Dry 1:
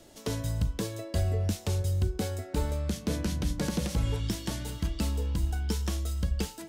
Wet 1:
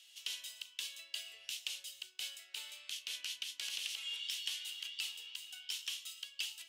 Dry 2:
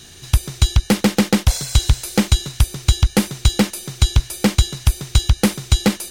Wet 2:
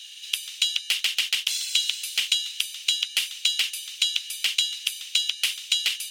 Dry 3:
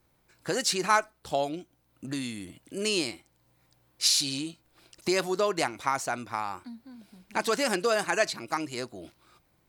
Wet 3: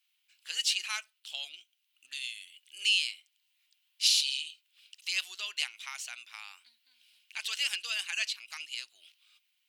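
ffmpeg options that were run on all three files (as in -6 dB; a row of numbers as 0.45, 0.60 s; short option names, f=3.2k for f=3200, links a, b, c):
-af "highpass=f=2.9k:t=q:w=4.9,volume=-5.5dB"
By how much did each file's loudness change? -10.0, -5.5, -3.0 LU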